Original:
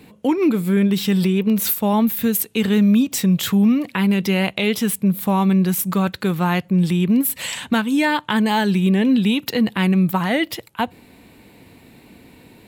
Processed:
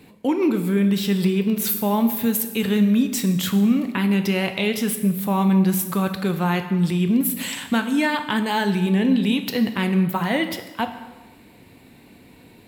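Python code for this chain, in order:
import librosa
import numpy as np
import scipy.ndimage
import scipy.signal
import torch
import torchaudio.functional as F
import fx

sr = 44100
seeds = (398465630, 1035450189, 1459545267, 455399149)

y = fx.rev_plate(x, sr, seeds[0], rt60_s=1.2, hf_ratio=0.8, predelay_ms=0, drr_db=7.0)
y = F.gain(torch.from_numpy(y), -3.0).numpy()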